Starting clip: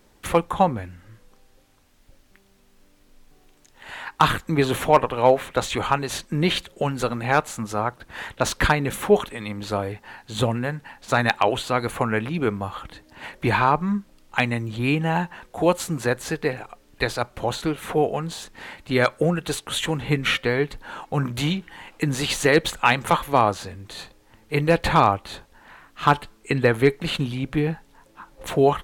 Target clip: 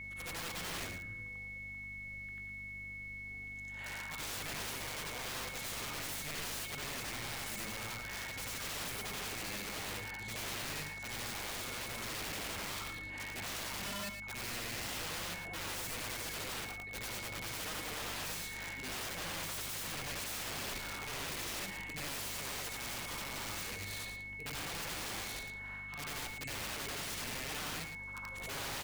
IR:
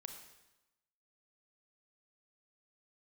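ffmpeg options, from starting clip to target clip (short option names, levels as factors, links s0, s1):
-filter_complex "[0:a]afftfilt=real='re':imag='-im':win_size=8192:overlap=0.75,areverse,acompressor=threshold=0.0224:ratio=5,areverse,aeval=exprs='val(0)+0.00708*sin(2*PI*2200*n/s)':c=same,aeval=exprs='(mod(53.1*val(0)+1,2)-1)/53.1':c=same,aeval=exprs='val(0)+0.00316*(sin(2*PI*50*n/s)+sin(2*PI*2*50*n/s)/2+sin(2*PI*3*50*n/s)/3+sin(2*PI*4*50*n/s)/4+sin(2*PI*5*50*n/s)/5)':c=same,asplit=2[s0][s1];[s1]aecho=0:1:111:0.376[s2];[s0][s2]amix=inputs=2:normalize=0,volume=0.794"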